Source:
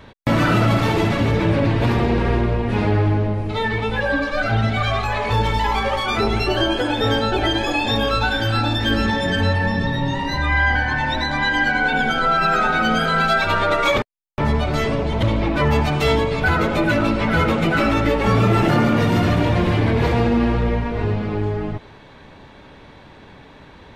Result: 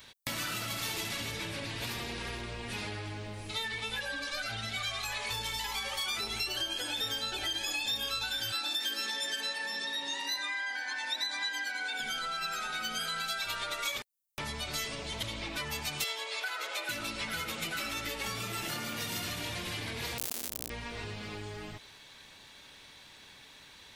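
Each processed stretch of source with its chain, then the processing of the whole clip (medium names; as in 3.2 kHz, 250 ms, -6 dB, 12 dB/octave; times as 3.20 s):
8.52–12.00 s: high-pass 280 Hz 24 dB/octave + band-stop 3 kHz, Q 18
16.04–16.89 s: high-pass 470 Hz 24 dB/octave + treble shelf 7.7 kHz -10.5 dB
20.18–20.70 s: Schmitt trigger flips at -25.5 dBFS + transformer saturation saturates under 410 Hz
whole clip: pre-emphasis filter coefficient 0.9; compression, threshold -37 dBFS; treble shelf 2.2 kHz +9.5 dB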